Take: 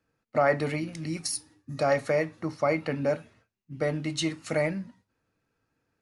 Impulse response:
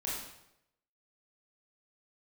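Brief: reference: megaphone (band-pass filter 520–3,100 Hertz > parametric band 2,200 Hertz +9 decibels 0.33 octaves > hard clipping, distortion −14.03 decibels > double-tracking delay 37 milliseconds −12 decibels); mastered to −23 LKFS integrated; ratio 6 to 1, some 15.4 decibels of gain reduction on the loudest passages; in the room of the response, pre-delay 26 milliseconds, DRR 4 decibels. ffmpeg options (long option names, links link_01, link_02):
-filter_complex "[0:a]acompressor=threshold=-36dB:ratio=6,asplit=2[link_01][link_02];[1:a]atrim=start_sample=2205,adelay=26[link_03];[link_02][link_03]afir=irnorm=-1:irlink=0,volume=-7.5dB[link_04];[link_01][link_04]amix=inputs=2:normalize=0,highpass=520,lowpass=3100,equalizer=frequency=2200:width_type=o:width=0.33:gain=9,asoftclip=type=hard:threshold=-35dB,asplit=2[link_05][link_06];[link_06]adelay=37,volume=-12dB[link_07];[link_05][link_07]amix=inputs=2:normalize=0,volume=19dB"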